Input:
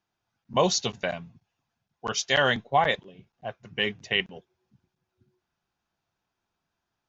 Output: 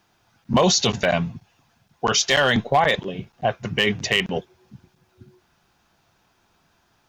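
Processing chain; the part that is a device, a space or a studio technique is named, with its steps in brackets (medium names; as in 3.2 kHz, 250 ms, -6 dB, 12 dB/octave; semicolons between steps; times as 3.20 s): loud club master (compression 2:1, threshold -25 dBFS, peak gain reduction 5.5 dB; hard clipper -18 dBFS, distortion -19 dB; loudness maximiser +27 dB); trim -8.5 dB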